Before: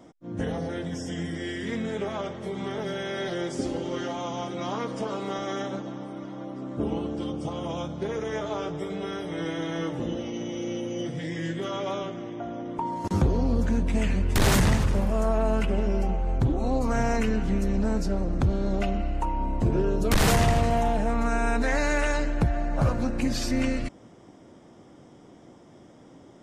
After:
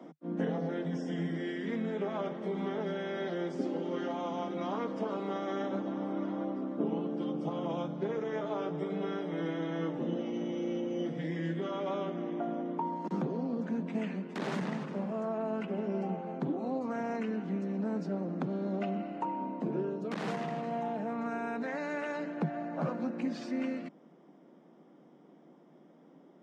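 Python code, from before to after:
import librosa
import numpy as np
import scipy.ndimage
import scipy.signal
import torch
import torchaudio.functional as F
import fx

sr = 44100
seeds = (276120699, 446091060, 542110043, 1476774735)

y = scipy.signal.sosfilt(scipy.signal.butter(16, 150.0, 'highpass', fs=sr, output='sos'), x)
y = fx.rider(y, sr, range_db=10, speed_s=0.5)
y = fx.spacing_loss(y, sr, db_at_10k=24)
y = F.gain(torch.from_numpy(y), -4.5).numpy()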